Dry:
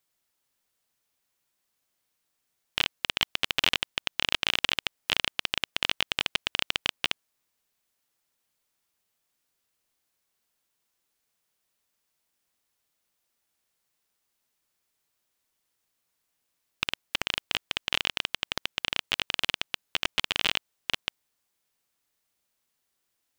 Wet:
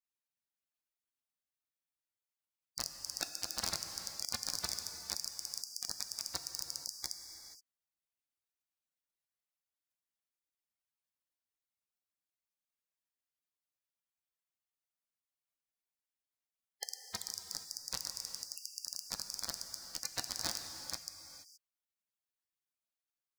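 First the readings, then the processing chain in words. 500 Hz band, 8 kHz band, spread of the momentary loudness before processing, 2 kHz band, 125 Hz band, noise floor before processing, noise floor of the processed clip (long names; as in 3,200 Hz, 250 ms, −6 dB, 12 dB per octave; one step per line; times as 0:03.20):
−13.5 dB, +3.0 dB, 6 LU, −22.0 dB, −10.5 dB, −79 dBFS, below −85 dBFS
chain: gate on every frequency bin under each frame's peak −15 dB weak
parametric band 410 Hz −11 dB 0.31 octaves
reverb whose tail is shaped and stops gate 500 ms flat, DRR 5.5 dB
level +2 dB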